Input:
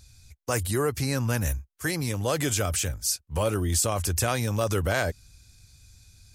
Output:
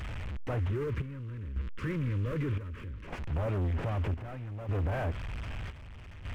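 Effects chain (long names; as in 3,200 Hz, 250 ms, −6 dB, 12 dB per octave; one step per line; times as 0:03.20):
linear delta modulator 16 kbit/s, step −38.5 dBFS
low-shelf EQ 230 Hz +7 dB
leveller curve on the samples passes 3
0:00.70–0:03.08: Butterworth band-reject 740 Hz, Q 1.5
brickwall limiter −18.5 dBFS, peak gain reduction 7.5 dB
square-wave tremolo 0.64 Hz, depth 65%, duty 65%
level −8.5 dB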